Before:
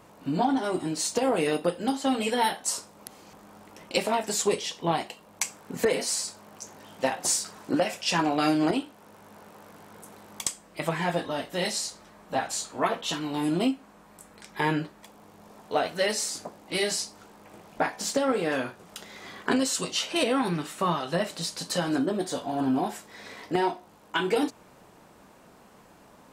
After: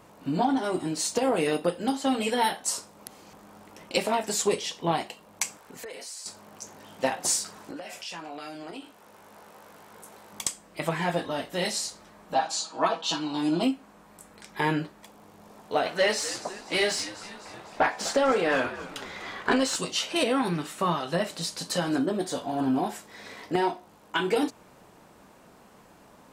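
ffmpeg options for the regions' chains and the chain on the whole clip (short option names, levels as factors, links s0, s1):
-filter_complex "[0:a]asettb=1/sr,asplit=3[s0][s1][s2];[s0]atrim=end=5.574[s3];[s1]atrim=start=5.57:end=6.26,asetpts=PTS-STARTPTS,afade=t=in:d=0.004:c=qsin,afade=t=out:st=0.686:d=0.004:c=qsin,equalizer=f=180:w=0.72:g=-12,acompressor=threshold=0.00891:ratio=3:attack=3.2:release=140:knee=1:detection=peak[s4];[s2]atrim=start=6.256[s5];[s3][s4]acrossfade=d=0.004:c1=hsin:c2=qsin[s6];[s6][s5]acrossfade=d=0.004:c1=qsin:c2=hsin,asettb=1/sr,asplit=3[s7][s8][s9];[s7]atrim=end=7.684[s10];[s8]atrim=start=7.68:end=10.33,asetpts=PTS-STARTPTS,afade=t=in:d=0.004:c=qsin,afade=t=out:st=2.646:d=0.004:c=qsin,equalizer=f=120:w=0.49:g=-8,acompressor=threshold=0.0158:ratio=6:attack=3.2:release=140:knee=1:detection=peak,asplit=2[s11][s12];[s12]adelay=18,volume=0.398[s13];[s11][s13]amix=inputs=2:normalize=0,atrim=end_sample=116865[s14];[s9]atrim=start=10.326[s15];[s10][s14]acrossfade=d=0.004:c1=hsin:c2=qsin[s16];[s16][s15]acrossfade=d=0.004:c1=qsin:c2=hsin,asettb=1/sr,asplit=3[s17][s18][s19];[s17]atrim=end=12.344[s20];[s18]atrim=start=12.34:end=13.63,asetpts=PTS-STARTPTS,afade=t=in:d=0.004:c=qsin,afade=t=out:st=1.286:d=0.004:c=qsin,highpass=220,equalizer=f=430:t=q:w=4:g=-7,equalizer=f=890:t=q:w=4:g=4,equalizer=f=2000:t=q:w=4:g=-8,equalizer=f=4500:t=q:w=4:g=6,equalizer=f=8400:t=q:w=4:g=-6,lowpass=f=9100:w=0.5412,lowpass=f=9100:w=1.3066,aecho=1:1:6.2:0.57,atrim=end_sample=56889[s21];[s19]atrim=start=13.626[s22];[s20][s21]acrossfade=d=0.004:c1=hsin:c2=qsin[s23];[s23][s22]acrossfade=d=0.004:c1=qsin:c2=hsin,asettb=1/sr,asplit=3[s24][s25][s26];[s24]atrim=end=15.864[s27];[s25]atrim=start=15.86:end=19.76,asetpts=PTS-STARTPTS,afade=t=in:d=0.004:c=qsin,afade=t=out:st=3.896:d=0.004:c=qsin,asplit=6[s28][s29][s30][s31][s32][s33];[s29]adelay=249,afreqshift=-91,volume=0.15[s34];[s30]adelay=498,afreqshift=-182,volume=0.0841[s35];[s31]adelay=747,afreqshift=-273,volume=0.0468[s36];[s32]adelay=996,afreqshift=-364,volume=0.0263[s37];[s33]adelay=1245,afreqshift=-455,volume=0.0148[s38];[s28][s34][s35][s36][s37][s38]amix=inputs=6:normalize=0,atrim=end_sample=171990,asplit=2[s39][s40];[s40]highpass=f=720:p=1,volume=4.47,asoftclip=type=tanh:threshold=0.282[s41];[s39][s41]amix=inputs=2:normalize=0,lowpass=f=2400:p=1,volume=0.501[s42];[s26]atrim=start=19.756[s43];[s27][s42]acrossfade=d=0.004:c1=hsin:c2=qsin[s44];[s44][s43]acrossfade=d=0.004:c1=qsin:c2=hsin"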